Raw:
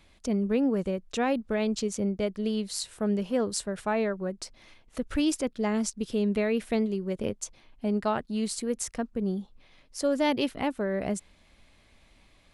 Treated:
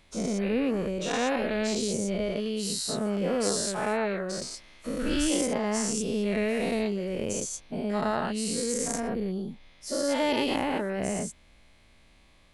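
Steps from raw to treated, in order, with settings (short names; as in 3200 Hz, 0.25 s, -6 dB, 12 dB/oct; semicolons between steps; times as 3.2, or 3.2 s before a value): spectral dilation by 0.24 s; gain -5 dB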